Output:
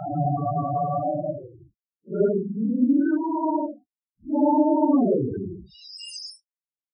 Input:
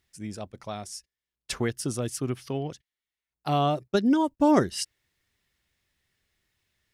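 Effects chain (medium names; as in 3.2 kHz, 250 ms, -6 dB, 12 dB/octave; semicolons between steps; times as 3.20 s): bit crusher 8-bit; Paulstretch 4.6×, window 0.05 s, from 3.47 s; loudest bins only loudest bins 8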